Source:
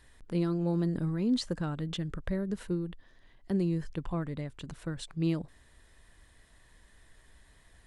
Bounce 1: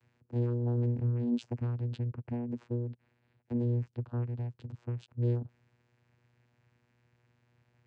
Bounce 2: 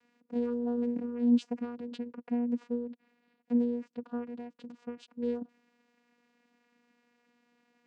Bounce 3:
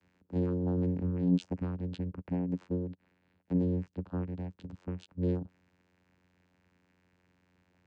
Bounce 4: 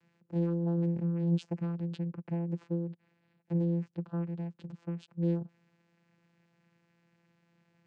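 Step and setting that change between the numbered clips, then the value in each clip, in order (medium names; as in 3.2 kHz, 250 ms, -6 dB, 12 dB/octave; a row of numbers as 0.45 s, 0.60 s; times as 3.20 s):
vocoder, frequency: 120 Hz, 240 Hz, 90 Hz, 170 Hz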